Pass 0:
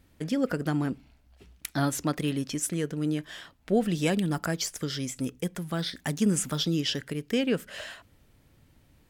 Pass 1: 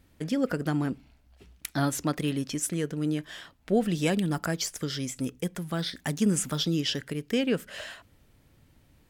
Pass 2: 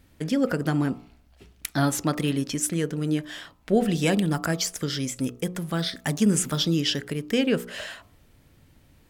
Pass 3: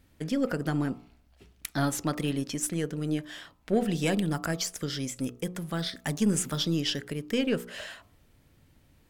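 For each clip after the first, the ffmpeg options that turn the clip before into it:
-af anull
-af "bandreject=f=60.06:t=h:w=4,bandreject=f=120.12:t=h:w=4,bandreject=f=180.18:t=h:w=4,bandreject=f=240.24:t=h:w=4,bandreject=f=300.3:t=h:w=4,bandreject=f=360.36:t=h:w=4,bandreject=f=420.42:t=h:w=4,bandreject=f=480.48:t=h:w=4,bandreject=f=540.54:t=h:w=4,bandreject=f=600.6:t=h:w=4,bandreject=f=660.66:t=h:w=4,bandreject=f=720.72:t=h:w=4,bandreject=f=780.78:t=h:w=4,bandreject=f=840.84:t=h:w=4,bandreject=f=900.9:t=h:w=4,bandreject=f=960.96:t=h:w=4,bandreject=f=1.02102k:t=h:w=4,bandreject=f=1.08108k:t=h:w=4,bandreject=f=1.14114k:t=h:w=4,bandreject=f=1.2012k:t=h:w=4,bandreject=f=1.26126k:t=h:w=4,bandreject=f=1.32132k:t=h:w=4,volume=4dB"
-af "aeval=exprs='0.355*(cos(1*acos(clip(val(0)/0.355,-1,1)))-cos(1*PI/2))+0.01*(cos(6*acos(clip(val(0)/0.355,-1,1)))-cos(6*PI/2))':c=same,volume=-4.5dB"

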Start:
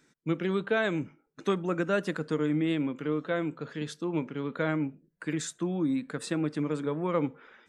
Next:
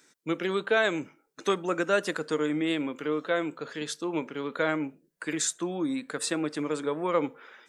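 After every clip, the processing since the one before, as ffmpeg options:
-af "bass=f=250:g=-14,treble=f=4k:g=6,volume=4dB"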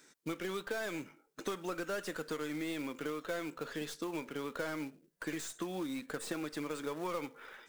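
-filter_complex "[0:a]acrossover=split=1200[a][b];[a]acompressor=threshold=-36dB:ratio=12[c];[b]aeval=exprs='(tanh(141*val(0)+0.4)-tanh(0.4))/141':c=same[d];[c][d]amix=inputs=2:normalize=0,acrusher=bits=4:mode=log:mix=0:aa=0.000001"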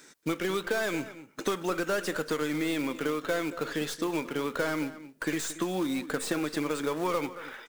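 -filter_complex "[0:a]asplit=2[a][b];[b]adelay=227.4,volume=-15dB,highshelf=f=4k:g=-5.12[c];[a][c]amix=inputs=2:normalize=0,volume=8.5dB"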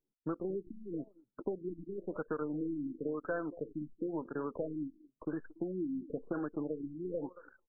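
-af "aresample=8000,aresample=44100,anlmdn=3.98,afftfilt=real='re*lt(b*sr/1024,330*pow(1800/330,0.5+0.5*sin(2*PI*0.97*pts/sr)))':imag='im*lt(b*sr/1024,330*pow(1800/330,0.5+0.5*sin(2*PI*0.97*pts/sr)))':win_size=1024:overlap=0.75,volume=-6dB"

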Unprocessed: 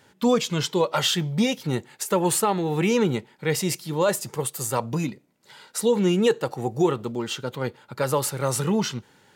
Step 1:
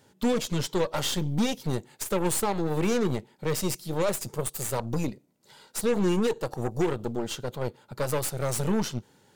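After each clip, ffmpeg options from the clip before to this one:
-af "equalizer=f=1.9k:w=0.64:g=-7.5,aeval=exprs='0.282*(cos(1*acos(clip(val(0)/0.282,-1,1)))-cos(1*PI/2))+0.0355*(cos(8*acos(clip(val(0)/0.282,-1,1)))-cos(8*PI/2))':c=same,alimiter=limit=-17dB:level=0:latency=1:release=111,volume=-1dB"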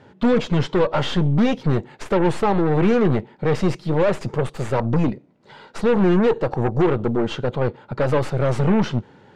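-af "aeval=exprs='0.133*sin(PI/2*1.41*val(0)/0.133)':c=same,lowpass=2.3k,volume=5.5dB"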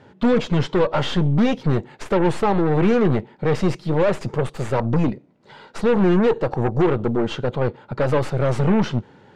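-af anull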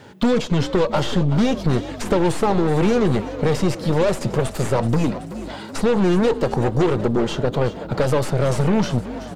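-filter_complex "[0:a]aemphasis=mode=production:type=75kf,acrossover=split=1300|3400[a][b][c];[a]acompressor=threshold=-20dB:ratio=4[d];[b]acompressor=threshold=-43dB:ratio=4[e];[c]acompressor=threshold=-40dB:ratio=4[f];[d][e][f]amix=inputs=3:normalize=0,asplit=2[g][h];[h]asplit=7[i][j][k][l][m][n][o];[i]adelay=378,afreqshift=48,volume=-14dB[p];[j]adelay=756,afreqshift=96,volume=-17.9dB[q];[k]adelay=1134,afreqshift=144,volume=-21.8dB[r];[l]adelay=1512,afreqshift=192,volume=-25.6dB[s];[m]adelay=1890,afreqshift=240,volume=-29.5dB[t];[n]adelay=2268,afreqshift=288,volume=-33.4dB[u];[o]adelay=2646,afreqshift=336,volume=-37.3dB[v];[p][q][r][s][t][u][v]amix=inputs=7:normalize=0[w];[g][w]amix=inputs=2:normalize=0,volume=4.5dB"

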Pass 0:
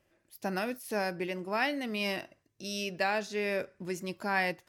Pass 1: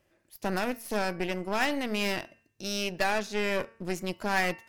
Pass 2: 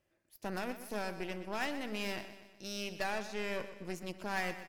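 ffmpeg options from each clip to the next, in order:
-af "aeval=exprs='0.141*(cos(1*acos(clip(val(0)/0.141,-1,1)))-cos(1*PI/2))+0.0158*(cos(8*acos(clip(val(0)/0.141,-1,1)))-cos(8*PI/2))':c=same,bandreject=f=227:t=h:w=4,bandreject=f=454:t=h:w=4,bandreject=f=681:t=h:w=4,bandreject=f=908:t=h:w=4,bandreject=f=1.135k:t=h:w=4,bandreject=f=1.362k:t=h:w=4,bandreject=f=1.589k:t=h:w=4,bandreject=f=1.816k:t=h:w=4,bandreject=f=2.043k:t=h:w=4,bandreject=f=2.27k:t=h:w=4,bandreject=f=2.497k:t=h:w=4,bandreject=f=2.724k:t=h:w=4,bandreject=f=2.951k:t=h:w=4,volume=2dB"
-af "aecho=1:1:123|246|369|492|615:0.237|0.126|0.0666|0.0353|0.0187,volume=-9dB"

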